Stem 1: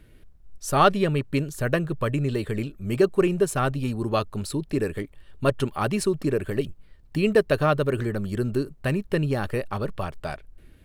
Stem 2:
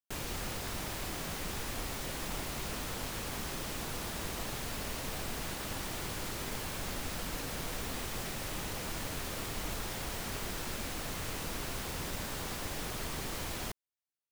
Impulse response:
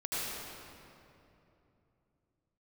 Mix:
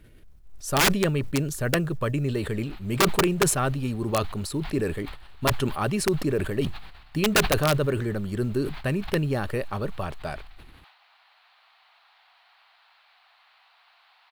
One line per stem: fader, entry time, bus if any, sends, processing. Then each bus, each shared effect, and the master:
−1.5 dB, 0.00 s, no send, no processing
−15.5 dB, 2.25 s, no send, Chebyshev band-pass filter 730–4,300 Hz, order 4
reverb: not used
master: log-companded quantiser 8 bits; wrap-around overflow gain 13.5 dB; level that may fall only so fast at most 69 dB per second

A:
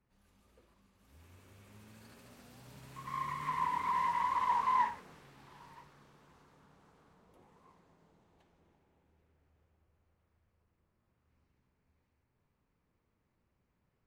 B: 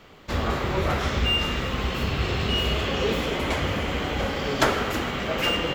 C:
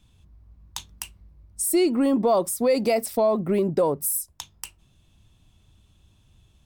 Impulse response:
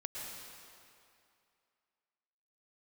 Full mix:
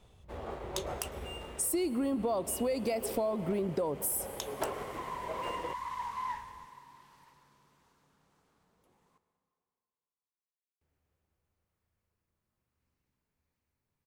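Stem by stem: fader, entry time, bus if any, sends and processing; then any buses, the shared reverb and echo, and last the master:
−10.0 dB, 1.50 s, muted 0:09.18–0:10.81, send −7 dB, high-shelf EQ 3,600 Hz +10 dB
−7.0 dB, 0.00 s, no send, running median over 9 samples; flat-topped bell 580 Hz +8.5 dB; expander for the loud parts 1.5 to 1, over −38 dBFS; automatic ducking −8 dB, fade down 0.35 s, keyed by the third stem
−3.5 dB, 0.00 s, send −17 dB, no processing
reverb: on, RT60 2.5 s, pre-delay 100 ms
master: downward compressor 4 to 1, threshold −30 dBFS, peak gain reduction 9.5 dB

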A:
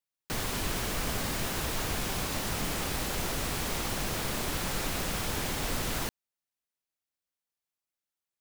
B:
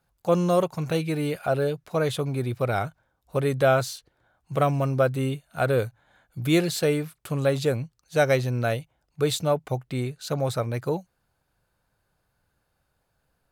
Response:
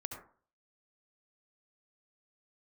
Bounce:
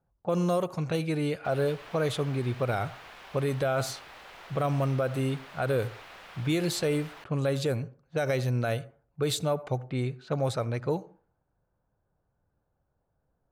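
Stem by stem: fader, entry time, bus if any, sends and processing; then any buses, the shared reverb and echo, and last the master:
−9.5 dB, 1.15 s, no send, three-way crossover with the lows and the highs turned down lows −19 dB, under 540 Hz, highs −20 dB, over 3,700 Hz
−3.0 dB, 0.00 s, send −14.5 dB, low-pass that shuts in the quiet parts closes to 870 Hz, open at −20.5 dBFS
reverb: on, RT60 0.45 s, pre-delay 62 ms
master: brickwall limiter −19 dBFS, peak gain reduction 8.5 dB

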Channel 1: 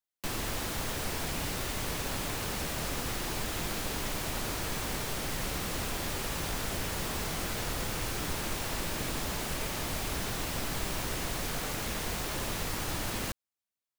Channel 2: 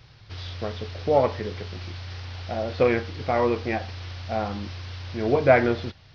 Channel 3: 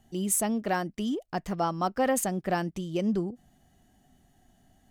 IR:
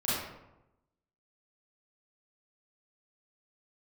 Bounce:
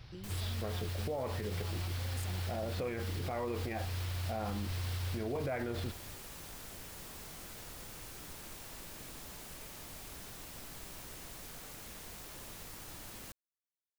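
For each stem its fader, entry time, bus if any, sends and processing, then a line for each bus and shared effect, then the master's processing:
−16.0 dB, 0.00 s, no send, high-shelf EQ 6,300 Hz +7 dB
−3.5 dB, 0.00 s, no send, low-shelf EQ 68 Hz +9.5 dB; brickwall limiter −14.5 dBFS, peak gain reduction 10.5 dB
−14.5 dB, 0.00 s, no send, compressor whose output falls as the input rises −34 dBFS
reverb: not used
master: brickwall limiter −29 dBFS, peak gain reduction 11.5 dB

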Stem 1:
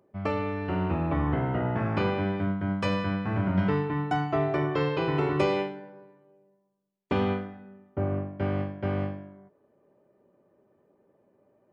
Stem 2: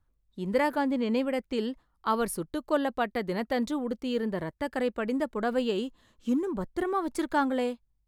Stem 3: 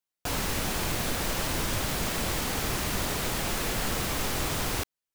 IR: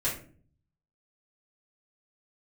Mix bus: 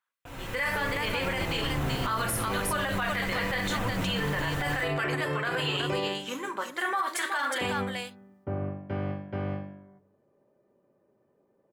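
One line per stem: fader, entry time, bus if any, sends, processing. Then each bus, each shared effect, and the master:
−16.5 dB, 0.50 s, no bus, send −18.5 dB, no echo send, no processing
+2.0 dB, 0.00 s, bus A, send −9.5 dB, echo send −8 dB, high-pass filter 1,500 Hz 12 dB per octave
−15.0 dB, 0.00 s, bus A, send −14 dB, no echo send, notch comb filter 210 Hz
bus A: 0.0 dB, Savitzky-Golay smoothing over 25 samples; downward compressor, threshold −37 dBFS, peak gain reduction 11 dB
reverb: on, RT60 0.45 s, pre-delay 4 ms
echo: single-tap delay 369 ms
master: automatic gain control gain up to 12 dB; brickwall limiter −20 dBFS, peak gain reduction 11 dB

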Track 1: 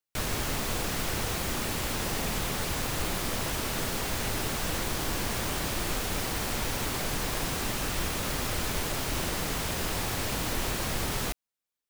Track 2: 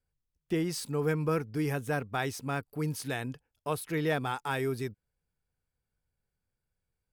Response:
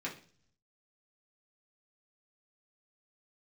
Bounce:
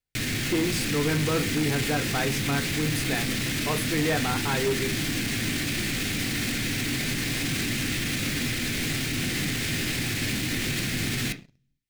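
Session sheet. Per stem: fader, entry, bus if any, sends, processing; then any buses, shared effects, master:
−5.5 dB, 0.00 s, send −4.5 dB, octave-band graphic EQ 125/250/500/1,000/2,000/4,000/8,000 Hz +9/+9/−4/−11/+9/+5/+3 dB; brickwall limiter −23 dBFS, peak gain reduction 10 dB
−4.5 dB, 0.00 s, send −5.5 dB, no processing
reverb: on, RT60 0.45 s, pre-delay 3 ms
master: leveller curve on the samples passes 2

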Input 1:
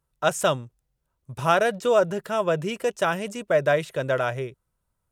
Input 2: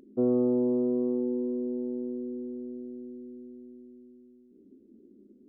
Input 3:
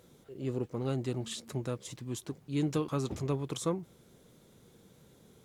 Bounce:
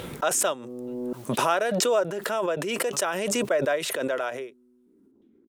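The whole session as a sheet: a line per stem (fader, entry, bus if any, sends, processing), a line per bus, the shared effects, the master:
−4.5 dB, 0.00 s, no bus, no send, high-pass filter 250 Hz 24 dB per octave
−7.5 dB, 0.35 s, muted 0:01.13–0:03.95, bus A, no send, compressor whose output falls as the input rises −34 dBFS, ratio −1
−16.5 dB, 0.00 s, bus A, no send, auto-filter low-pass saw down 2.3 Hz 840–3,200 Hz; level that may rise only so fast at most 180 dB per second; automatic ducking −23 dB, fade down 1.20 s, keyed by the first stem
bus A: 0.0 dB, downward compressor 5 to 1, threshold −57 dBFS, peak gain reduction 12.5 dB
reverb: not used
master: background raised ahead of every attack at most 21 dB per second

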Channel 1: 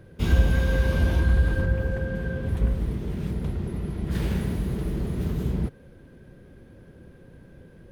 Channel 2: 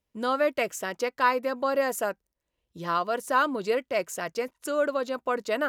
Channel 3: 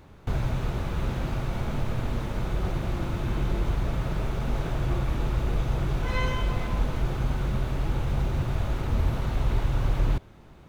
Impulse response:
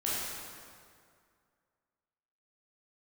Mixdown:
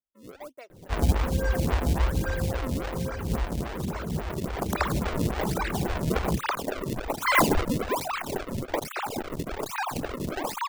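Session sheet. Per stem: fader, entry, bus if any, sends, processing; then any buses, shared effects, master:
+2.0 dB, 0.70 s, no send, low-pass filter 2,900 Hz
−16.5 dB, 0.00 s, no send, no processing
0:04.26 −13.5 dB → 0:04.85 −3 dB, 1.20 s, no send, three sine waves on the formant tracks; spectral tilt +4 dB per octave; mid-hump overdrive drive 9 dB, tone 1,700 Hz, clips at −2 dBFS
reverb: not used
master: low-pass filter 3,700 Hz 6 dB per octave; sample-and-hold swept by an LFO 32×, swing 160% 1.2 Hz; phaser with staggered stages 3.6 Hz

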